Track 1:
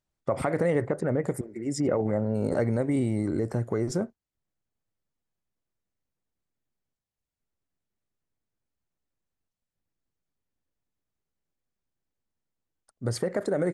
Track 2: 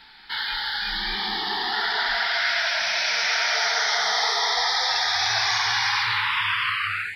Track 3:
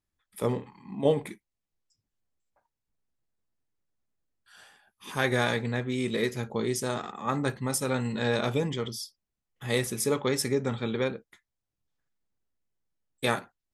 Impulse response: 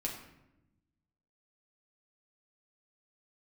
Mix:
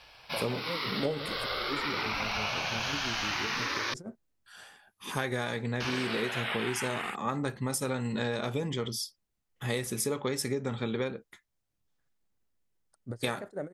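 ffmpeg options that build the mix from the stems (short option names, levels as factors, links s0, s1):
-filter_complex "[0:a]tremolo=f=5.9:d=0.92,alimiter=limit=0.0841:level=0:latency=1:release=290,adelay=50,volume=0.596[s0];[1:a]highshelf=f=7000:t=q:w=3:g=6.5,aeval=exprs='val(0)*sin(2*PI*570*n/s+570*0.45/0.37*sin(2*PI*0.37*n/s))':c=same,volume=0.841,asplit=3[s1][s2][s3];[s1]atrim=end=3.94,asetpts=PTS-STARTPTS,afade=t=out:st=3.936:d=0.004:c=hsin[s4];[s2]atrim=start=3.94:end=5.8,asetpts=PTS-STARTPTS,volume=0[s5];[s3]atrim=start=5.8,asetpts=PTS-STARTPTS,afade=t=in:d=0.004:c=hsin[s6];[s4][s5][s6]concat=n=3:v=0:a=1[s7];[2:a]volume=1.41[s8];[s0][s7][s8]amix=inputs=3:normalize=0,acompressor=threshold=0.0398:ratio=6"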